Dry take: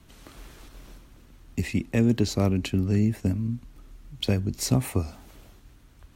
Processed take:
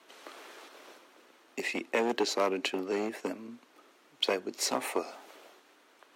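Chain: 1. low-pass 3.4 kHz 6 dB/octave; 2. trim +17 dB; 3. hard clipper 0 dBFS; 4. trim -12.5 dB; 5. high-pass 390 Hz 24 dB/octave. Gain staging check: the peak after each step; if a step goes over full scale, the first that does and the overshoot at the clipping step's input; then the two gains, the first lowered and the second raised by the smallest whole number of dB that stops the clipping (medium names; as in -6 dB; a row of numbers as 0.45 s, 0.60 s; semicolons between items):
-9.0 dBFS, +8.0 dBFS, 0.0 dBFS, -12.5 dBFS, -13.5 dBFS; step 2, 8.0 dB; step 2 +9 dB, step 4 -4.5 dB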